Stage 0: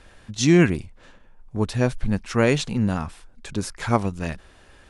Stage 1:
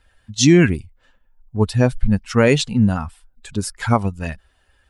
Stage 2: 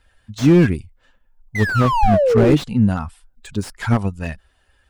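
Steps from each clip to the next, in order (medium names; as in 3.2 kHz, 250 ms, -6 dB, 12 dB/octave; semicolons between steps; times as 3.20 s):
expander on every frequency bin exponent 1.5; loudness maximiser +9.5 dB; trim -1 dB
painted sound fall, 1.55–2.57 s, 290–2100 Hz -15 dBFS; slew-rate limiter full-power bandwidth 130 Hz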